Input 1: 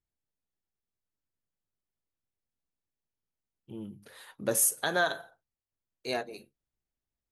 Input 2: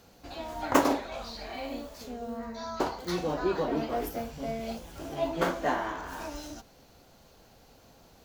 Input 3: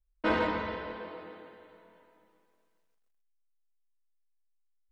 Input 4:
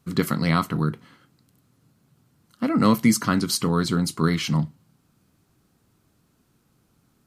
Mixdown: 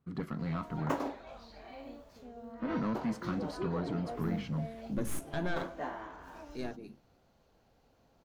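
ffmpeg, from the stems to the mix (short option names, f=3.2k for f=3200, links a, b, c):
-filter_complex "[0:a]aeval=exprs='(tanh(12.6*val(0)+0.65)-tanh(0.65))/12.6':c=same,lowshelf=f=370:t=q:w=1.5:g=11.5,adelay=500,volume=-5.5dB[a];[1:a]adelay=150,volume=-10dB[b];[2:a]aeval=exprs='val(0)*pow(10,-25*(0.5-0.5*cos(2*PI*2.6*n/s))/20)':c=same,adelay=2350,volume=-9.5dB[c];[3:a]asoftclip=type=tanh:threshold=-18dB,lowpass=f=2.3k:p=1,volume=-10.5dB[d];[a][b][c][d]amix=inputs=4:normalize=0,highshelf=f=3.8k:g=-11"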